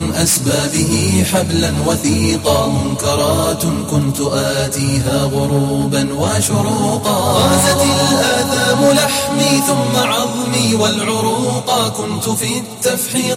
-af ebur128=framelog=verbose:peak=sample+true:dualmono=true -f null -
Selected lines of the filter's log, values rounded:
Integrated loudness:
  I:         -11.2 LUFS
  Threshold: -21.2 LUFS
Loudness range:
  LRA:         3.1 LU
  Threshold: -31.1 LUFS
  LRA low:   -12.5 LUFS
  LRA high:   -9.4 LUFS
Sample peak:
  Peak:       -2.1 dBFS
True peak:
  Peak:       -1.9 dBFS